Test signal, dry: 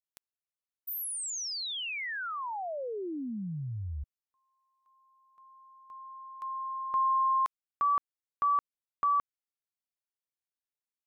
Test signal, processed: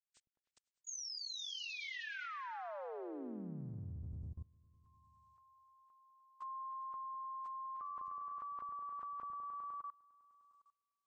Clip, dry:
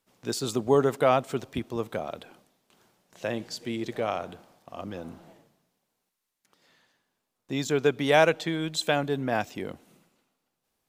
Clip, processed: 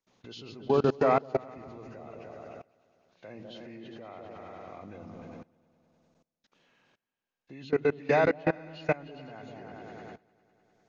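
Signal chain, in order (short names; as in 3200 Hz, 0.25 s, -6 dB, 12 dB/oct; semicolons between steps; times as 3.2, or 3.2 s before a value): nonlinear frequency compression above 1400 Hz 1.5:1; repeats that get brighter 0.101 s, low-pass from 200 Hz, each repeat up 2 oct, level -3 dB; level quantiser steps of 23 dB; gain +1 dB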